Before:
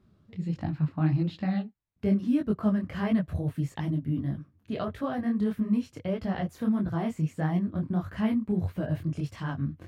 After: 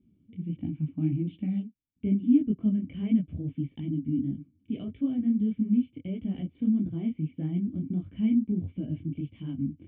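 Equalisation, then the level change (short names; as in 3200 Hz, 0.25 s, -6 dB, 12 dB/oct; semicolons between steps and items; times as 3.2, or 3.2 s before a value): vocal tract filter i; +6.5 dB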